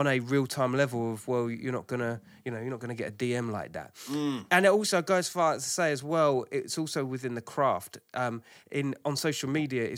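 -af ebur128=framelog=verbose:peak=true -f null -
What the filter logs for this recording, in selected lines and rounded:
Integrated loudness:
  I:         -29.5 LUFS
  Threshold: -39.6 LUFS
Loudness range:
  LRA:         6.3 LU
  Threshold: -49.4 LUFS
  LRA low:   -33.4 LUFS
  LRA high:  -27.1 LUFS
True peak:
  Peak:       -8.5 dBFS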